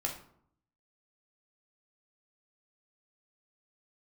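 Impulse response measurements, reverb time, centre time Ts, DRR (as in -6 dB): 0.65 s, 21 ms, 0.5 dB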